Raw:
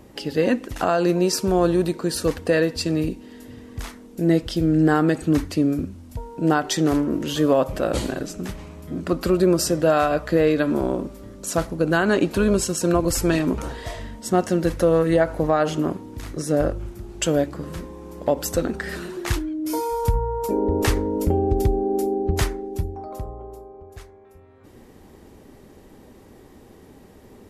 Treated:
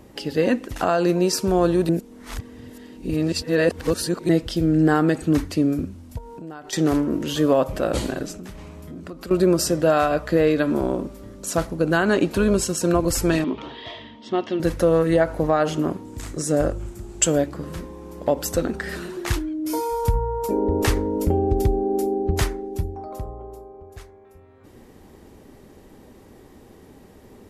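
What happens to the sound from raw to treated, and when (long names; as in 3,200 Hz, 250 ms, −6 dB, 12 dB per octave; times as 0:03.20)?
0:01.89–0:04.29: reverse
0:06.18–0:06.73: downward compressor 5 to 1, threshold −35 dBFS
0:08.35–0:09.31: downward compressor 4 to 1, threshold −34 dBFS
0:13.44–0:14.60: loudspeaker in its box 180–4,000 Hz, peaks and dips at 180 Hz −10 dB, 510 Hz −8 dB, 730 Hz −4 dB, 1,500 Hz −9 dB, 3,300 Hz +9 dB
0:16.05–0:17.38: parametric band 7,600 Hz +10 dB 0.5 octaves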